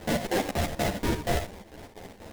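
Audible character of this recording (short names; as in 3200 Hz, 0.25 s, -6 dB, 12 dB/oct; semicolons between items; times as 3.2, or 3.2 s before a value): a quantiser's noise floor 8-bit, dither triangular; chopped level 4.1 Hz, depth 65%, duty 65%; aliases and images of a low sample rate 1300 Hz, jitter 20%; a shimmering, thickened sound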